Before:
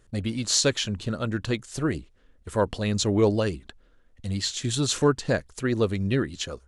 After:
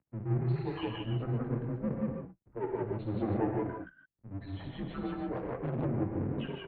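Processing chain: spectral contrast enhancement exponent 3.8; peaking EQ 230 Hz +12 dB 0.35 oct; peak limiter -21 dBFS, peak gain reduction 9 dB; chorus 1.6 Hz, delay 16 ms, depth 6.1 ms; loudspeakers at several distances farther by 20 m -8 dB, 60 m 0 dB; half-wave rectifier; mistuned SSB -100 Hz 200–2500 Hz; gated-style reverb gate 170 ms rising, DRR 3 dB; 5.35–5.85 s: loudspeaker Doppler distortion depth 0.93 ms

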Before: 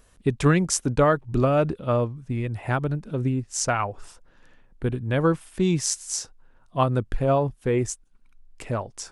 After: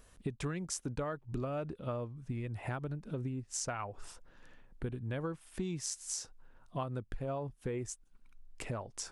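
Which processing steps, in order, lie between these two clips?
compression 5:1, threshold -33 dBFS, peak gain reduction 17.5 dB; trim -3 dB

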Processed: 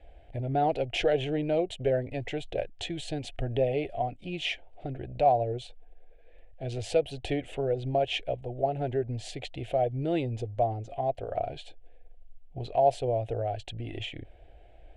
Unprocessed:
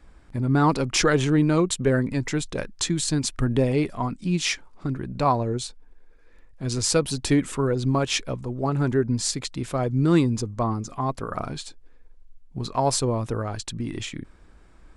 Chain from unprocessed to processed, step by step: FFT filter 110 Hz 0 dB, 200 Hz -15 dB, 720 Hz +12 dB, 1.1 kHz -24 dB, 1.6 kHz -8 dB, 3 kHz +4 dB, 5.1 kHz -18 dB; in parallel at +1.5 dB: compression, threshold -34 dBFS, peak gain reduction 21.5 dB; on the sum: trim -7.5 dB

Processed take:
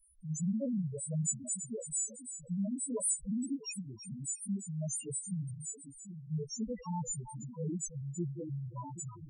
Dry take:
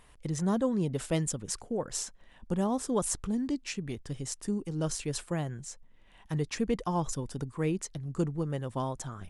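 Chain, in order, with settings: partials quantised in pitch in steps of 2 st; two-band feedback delay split 410 Hz, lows 782 ms, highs 330 ms, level -10 dB; loudest bins only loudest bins 2; trim -1.5 dB

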